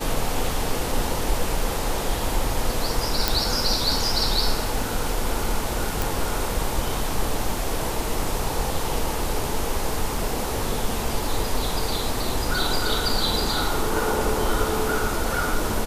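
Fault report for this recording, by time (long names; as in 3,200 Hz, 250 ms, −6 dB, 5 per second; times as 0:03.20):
0:03.28: click
0:06.02: click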